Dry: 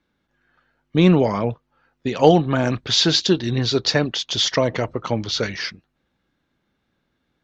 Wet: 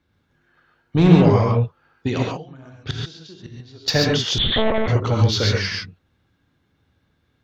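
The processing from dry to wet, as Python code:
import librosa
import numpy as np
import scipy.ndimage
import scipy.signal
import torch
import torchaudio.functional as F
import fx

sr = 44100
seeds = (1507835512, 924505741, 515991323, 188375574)

y = fx.peak_eq(x, sr, hz=93.0, db=14.5, octaves=0.75)
y = fx.gate_flip(y, sr, shuts_db=-12.0, range_db=-28, at=(2.21, 3.88))
y = 10.0 ** (-9.0 / 20.0) * np.tanh(y / 10.0 ** (-9.0 / 20.0))
y = fx.rev_gated(y, sr, seeds[0], gate_ms=160, shape='rising', drr_db=-0.5)
y = fx.lpc_monotone(y, sr, seeds[1], pitch_hz=220.0, order=10, at=(4.38, 4.88))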